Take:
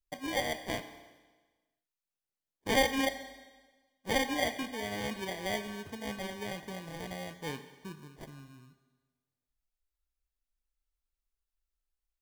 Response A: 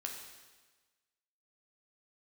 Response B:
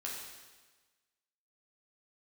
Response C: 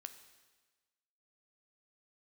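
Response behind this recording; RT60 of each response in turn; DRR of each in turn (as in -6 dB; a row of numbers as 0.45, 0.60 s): C; 1.3, 1.3, 1.3 s; 0.5, -4.5, 8.0 dB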